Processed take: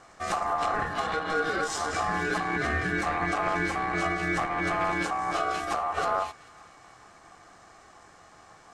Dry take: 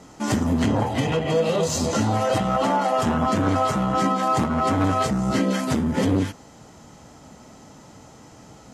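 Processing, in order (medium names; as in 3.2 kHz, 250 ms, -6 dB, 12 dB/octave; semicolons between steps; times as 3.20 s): low-pass 9.5 kHz 12 dB/octave; ring modulator 950 Hz; on a send: feedback echo behind a high-pass 437 ms, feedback 54%, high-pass 1.5 kHz, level -21.5 dB; on the sum: trim -4 dB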